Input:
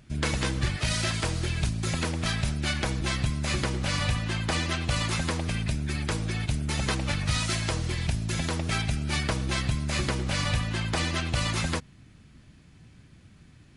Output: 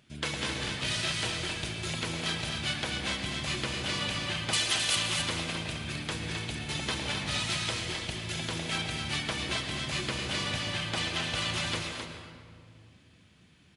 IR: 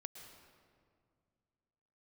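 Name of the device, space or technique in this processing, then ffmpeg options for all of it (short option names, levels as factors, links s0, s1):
stadium PA: -filter_complex "[0:a]asettb=1/sr,asplit=3[s0][s1][s2];[s0]atrim=end=4.534[s3];[s1]atrim=start=4.53:end=4.96,asetpts=PTS-STARTPTS,afade=t=in:d=0.004:c=qsin,afade=t=out:st=0.426:d=0.004:c=qsin,aemphasis=mode=production:type=riaa[s4];[s2]atrim=start=4.956[s5];[s3][s4]acrossfade=d=0.004:c1=hsin:c2=qsin[s6];[s6][s5]acrossfade=d=0.004:c1=qsin:c2=hsin,highpass=f=240:p=1,equalizer=f=3200:t=o:w=0.69:g=7,aecho=1:1:224.5|262.4:0.316|0.501[s7];[1:a]atrim=start_sample=2205[s8];[s7][s8]afir=irnorm=-1:irlink=0"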